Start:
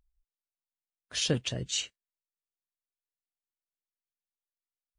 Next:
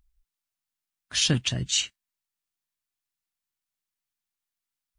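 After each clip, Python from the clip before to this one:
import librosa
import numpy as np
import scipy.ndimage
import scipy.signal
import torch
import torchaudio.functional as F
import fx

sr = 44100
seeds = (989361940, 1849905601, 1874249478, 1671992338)

y = fx.peak_eq(x, sr, hz=490.0, db=-12.5, octaves=0.81)
y = y * 10.0 ** (7.0 / 20.0)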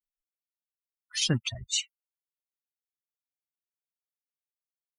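y = fx.bin_expand(x, sr, power=3.0)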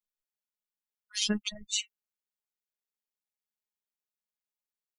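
y = fx.robotise(x, sr, hz=210.0)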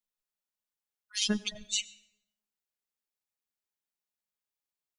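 y = fx.rev_plate(x, sr, seeds[0], rt60_s=1.0, hf_ratio=0.6, predelay_ms=75, drr_db=19.0)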